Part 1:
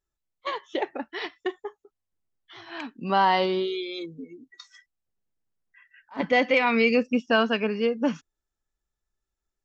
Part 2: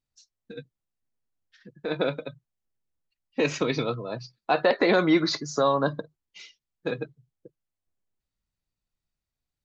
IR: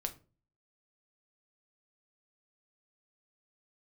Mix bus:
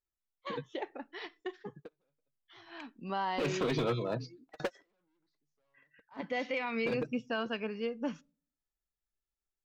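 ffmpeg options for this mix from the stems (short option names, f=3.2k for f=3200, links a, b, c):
-filter_complex "[0:a]volume=-12dB,asplit=3[a][b][c];[b]volume=-15dB[d];[1:a]highshelf=f=2.2k:g=-8,asoftclip=type=hard:threshold=-26.5dB,volume=0dB[e];[c]apad=whole_len=425139[f];[e][f]sidechaingate=range=-51dB:threshold=-60dB:ratio=16:detection=peak[g];[2:a]atrim=start_sample=2205[h];[d][h]afir=irnorm=-1:irlink=0[i];[a][g][i]amix=inputs=3:normalize=0,alimiter=limit=-24dB:level=0:latency=1:release=120"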